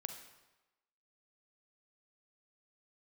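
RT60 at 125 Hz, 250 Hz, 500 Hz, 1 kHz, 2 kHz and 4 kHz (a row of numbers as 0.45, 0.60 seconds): 1.0, 0.95, 1.0, 1.1, 1.0, 0.90 seconds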